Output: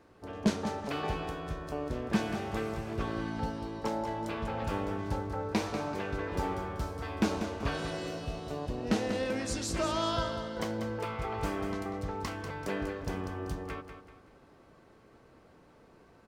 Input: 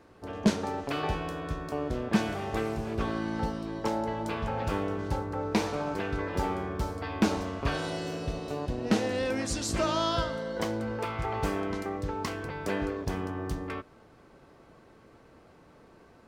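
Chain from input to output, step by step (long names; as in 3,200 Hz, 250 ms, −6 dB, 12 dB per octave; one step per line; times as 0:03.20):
repeating echo 192 ms, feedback 38%, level −9 dB
level −3.5 dB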